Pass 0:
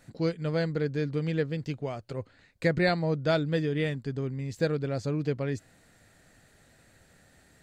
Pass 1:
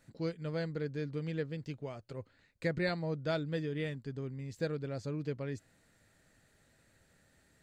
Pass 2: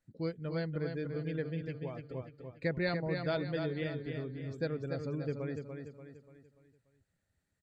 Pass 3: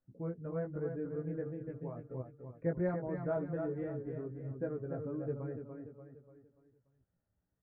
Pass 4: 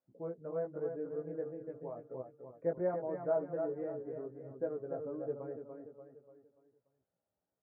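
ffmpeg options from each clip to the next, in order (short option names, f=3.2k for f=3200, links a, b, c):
-af "bandreject=f=730:w=13,volume=-8dB"
-filter_complex "[0:a]afftdn=nr=18:nf=-52,asplit=2[a][b];[b]aecho=0:1:291|582|873|1164|1455:0.501|0.221|0.097|0.0427|0.0188[c];[a][c]amix=inputs=2:normalize=0"
-af "lowpass=f=1.3k:w=0.5412,lowpass=f=1.3k:w=1.3066,flanger=delay=15.5:depth=2.1:speed=1.3,volume=1.5dB"
-af "bandpass=f=650:t=q:w=1.3:csg=0,volume=4dB"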